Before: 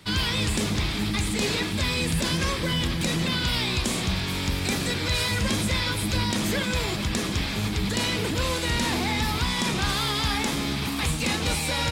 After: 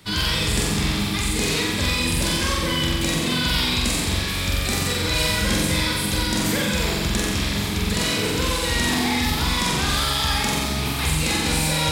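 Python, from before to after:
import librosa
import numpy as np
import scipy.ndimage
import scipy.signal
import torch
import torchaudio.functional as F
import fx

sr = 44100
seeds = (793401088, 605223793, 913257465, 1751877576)

y = fx.high_shelf(x, sr, hz=9700.0, db=6.5)
y = fx.room_flutter(y, sr, wall_m=7.7, rt60_s=1.1)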